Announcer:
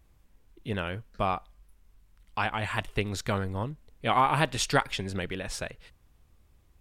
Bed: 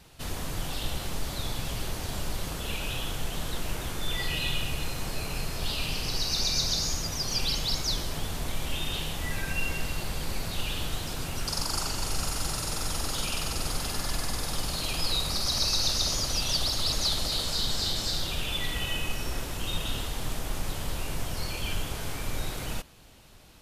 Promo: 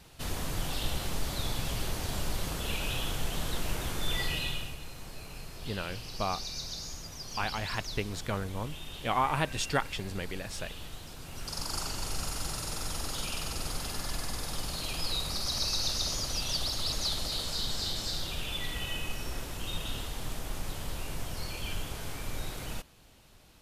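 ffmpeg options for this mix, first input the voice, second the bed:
ffmpeg -i stem1.wav -i stem2.wav -filter_complex "[0:a]adelay=5000,volume=-4.5dB[link_01];[1:a]volume=6.5dB,afade=type=out:start_time=4.18:duration=0.6:silence=0.281838,afade=type=in:start_time=11.22:duration=0.53:silence=0.446684[link_02];[link_01][link_02]amix=inputs=2:normalize=0" out.wav

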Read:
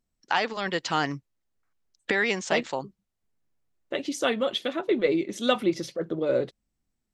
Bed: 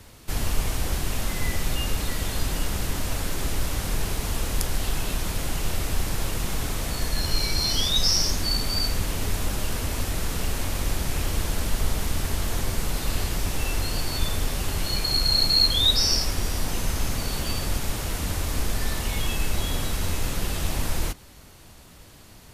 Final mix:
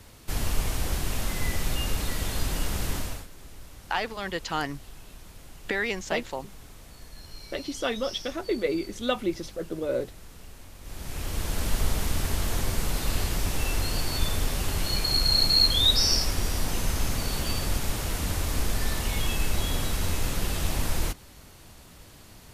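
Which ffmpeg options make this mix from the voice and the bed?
ffmpeg -i stem1.wav -i stem2.wav -filter_complex "[0:a]adelay=3600,volume=-3.5dB[link_01];[1:a]volume=16.5dB,afade=type=out:start_time=2.95:duration=0.32:silence=0.133352,afade=type=in:start_time=10.81:duration=0.91:silence=0.11885[link_02];[link_01][link_02]amix=inputs=2:normalize=0" out.wav

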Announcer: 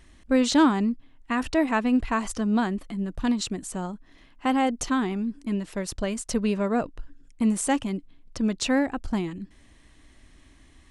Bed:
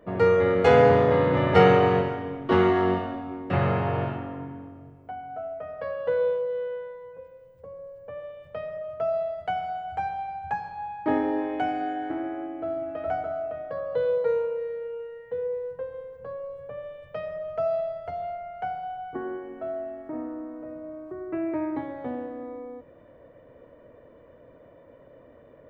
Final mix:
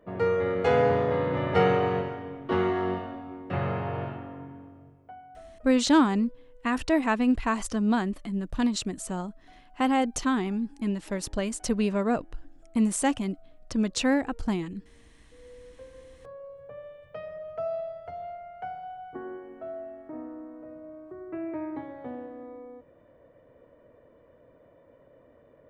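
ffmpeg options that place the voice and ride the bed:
ffmpeg -i stem1.wav -i stem2.wav -filter_complex "[0:a]adelay=5350,volume=-1dB[link_01];[1:a]volume=18.5dB,afade=type=out:start_time=4.82:duration=0.94:silence=0.0630957,afade=type=in:start_time=15.31:duration=1.4:silence=0.0630957[link_02];[link_01][link_02]amix=inputs=2:normalize=0" out.wav

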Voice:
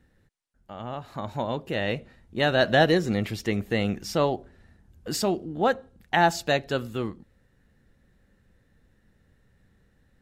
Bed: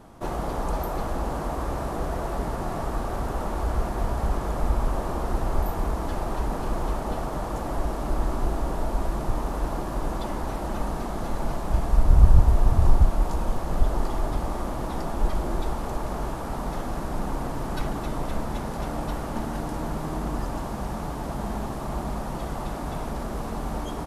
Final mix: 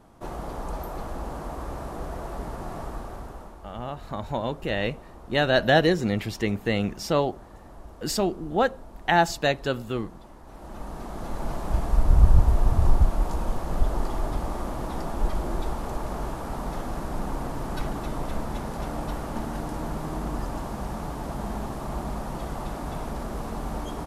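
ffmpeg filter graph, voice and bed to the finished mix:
ffmpeg -i stem1.wav -i stem2.wav -filter_complex "[0:a]adelay=2950,volume=0.5dB[link_01];[1:a]volume=11dB,afade=type=out:start_time=2.81:duration=0.79:silence=0.237137,afade=type=in:start_time=10.44:duration=1.2:silence=0.149624[link_02];[link_01][link_02]amix=inputs=2:normalize=0" out.wav

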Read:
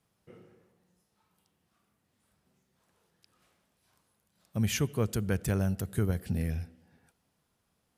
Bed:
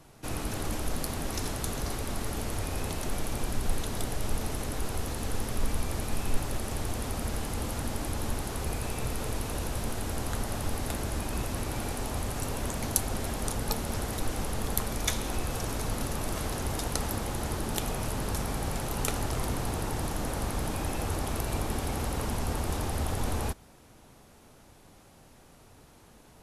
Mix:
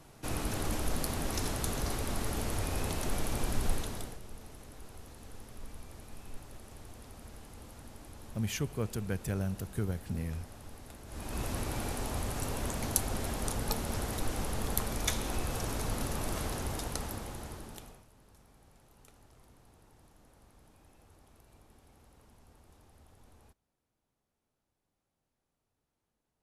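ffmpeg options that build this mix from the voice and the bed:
ffmpeg -i stem1.wav -i stem2.wav -filter_complex "[0:a]adelay=3800,volume=-5dB[link_01];[1:a]volume=13.5dB,afade=type=out:start_time=3.65:duration=0.55:silence=0.158489,afade=type=in:start_time=11.06:duration=0.41:silence=0.188365,afade=type=out:start_time=16.37:duration=1.68:silence=0.0446684[link_02];[link_01][link_02]amix=inputs=2:normalize=0" out.wav

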